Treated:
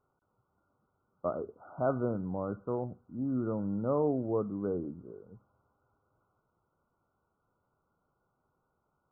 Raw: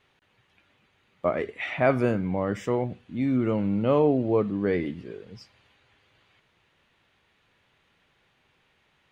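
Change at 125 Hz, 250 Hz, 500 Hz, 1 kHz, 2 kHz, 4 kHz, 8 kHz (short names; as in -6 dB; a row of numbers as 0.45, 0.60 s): -8.0 dB, -8.0 dB, -8.0 dB, -8.0 dB, -19.5 dB, under -35 dB, n/a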